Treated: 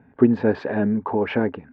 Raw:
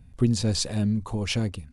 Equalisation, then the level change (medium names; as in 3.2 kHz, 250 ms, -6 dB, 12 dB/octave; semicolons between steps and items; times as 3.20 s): cabinet simulation 220–2100 Hz, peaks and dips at 270 Hz +7 dB, 420 Hz +9 dB, 610 Hz +4 dB, 870 Hz +10 dB, 1.6 kHz +10 dB; +5.5 dB